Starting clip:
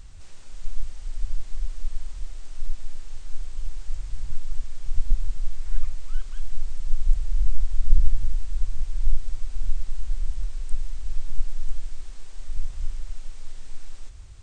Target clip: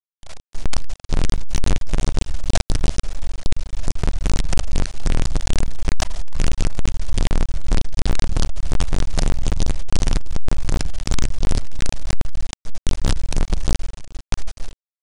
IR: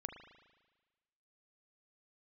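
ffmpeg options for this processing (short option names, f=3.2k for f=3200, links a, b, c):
-filter_complex "[0:a]afftfilt=real='re':imag='-im':win_size=4096:overlap=0.75,agate=range=-33dB:threshold=-28dB:ratio=3:detection=peak,firequalizer=gain_entry='entry(100,0);entry(150,-20);entry(220,10);entry(310,-20);entry(480,-8);entry(780,8);entry(1200,-2)':delay=0.05:min_phase=1,acrossover=split=100[a][b];[a]acompressor=threshold=-26dB:ratio=16[c];[c][b]amix=inputs=2:normalize=0,asoftclip=type=tanh:threshold=-35.5dB,asetrate=37084,aresample=44100,atempo=1.18921,acrusher=bits=7:dc=4:mix=0:aa=0.000001,asetrate=42336,aresample=44100,aresample=22050,aresample=44100,alimiter=level_in=31dB:limit=-1dB:release=50:level=0:latency=1,volume=-8dB"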